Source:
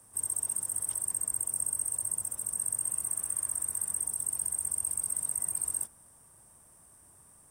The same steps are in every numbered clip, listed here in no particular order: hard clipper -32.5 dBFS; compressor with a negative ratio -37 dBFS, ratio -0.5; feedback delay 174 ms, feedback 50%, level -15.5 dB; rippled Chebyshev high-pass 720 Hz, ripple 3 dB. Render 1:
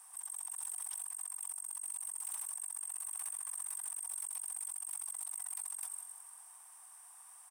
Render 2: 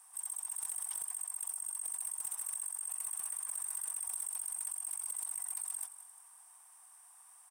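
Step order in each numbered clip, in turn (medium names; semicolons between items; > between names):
feedback delay > compressor with a negative ratio > hard clipper > rippled Chebyshev high-pass; rippled Chebyshev high-pass > compressor with a negative ratio > feedback delay > hard clipper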